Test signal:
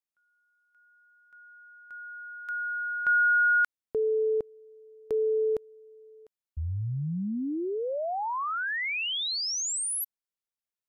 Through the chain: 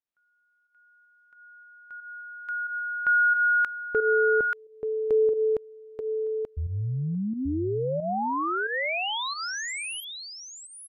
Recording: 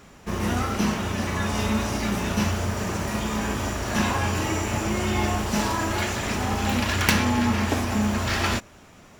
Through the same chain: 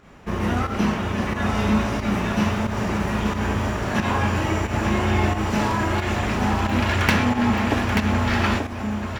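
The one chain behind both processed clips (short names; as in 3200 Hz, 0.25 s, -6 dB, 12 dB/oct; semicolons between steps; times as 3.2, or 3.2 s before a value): tone controls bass 0 dB, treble -11 dB; echo 0.883 s -5.5 dB; pump 90 bpm, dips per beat 1, -9 dB, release 0.128 s; gain +2.5 dB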